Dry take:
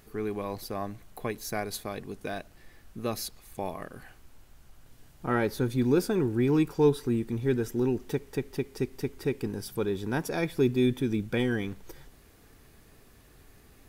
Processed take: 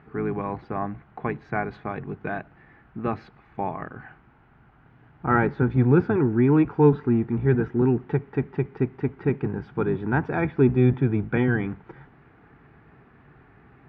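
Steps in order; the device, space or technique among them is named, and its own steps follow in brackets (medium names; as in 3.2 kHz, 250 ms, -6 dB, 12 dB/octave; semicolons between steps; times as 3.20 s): sub-octave bass pedal (octave divider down 1 oct, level -4 dB; cabinet simulation 80–2200 Hz, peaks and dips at 82 Hz -7 dB, 140 Hz +5 dB, 550 Hz -7 dB, 830 Hz +5 dB, 1.4 kHz +5 dB); trim +5 dB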